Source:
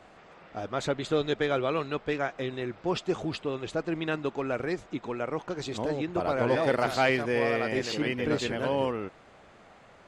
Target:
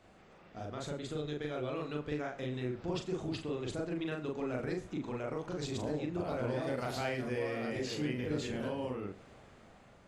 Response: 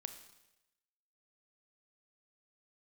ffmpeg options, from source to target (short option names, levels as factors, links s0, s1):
-filter_complex "[0:a]dynaudnorm=f=780:g=5:m=3.76,equalizer=f=890:w=0.41:g=-7,acompressor=threshold=0.0158:ratio=3,asplit=2[s0][s1];[s1]equalizer=f=3800:w=0.59:g=-12[s2];[1:a]atrim=start_sample=2205,afade=t=out:st=0.15:d=0.01,atrim=end_sample=7056,adelay=40[s3];[s2][s3]afir=irnorm=-1:irlink=0,volume=2.24[s4];[s0][s4]amix=inputs=2:normalize=0,volume=0.531"